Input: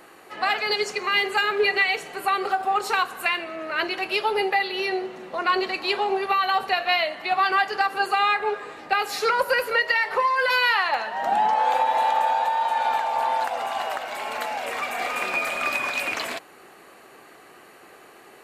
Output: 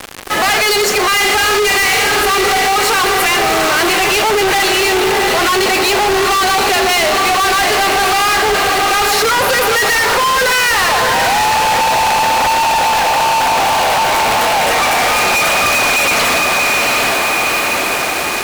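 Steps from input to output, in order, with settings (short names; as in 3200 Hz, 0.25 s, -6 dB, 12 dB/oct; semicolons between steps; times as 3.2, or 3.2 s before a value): 1.09–2.21 flutter echo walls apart 7 m, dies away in 0.46 s; soft clip -23.5 dBFS, distortion -9 dB; diffused feedback echo 0.747 s, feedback 55%, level -4.5 dB; fuzz box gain 49 dB, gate -43 dBFS; gain +1.5 dB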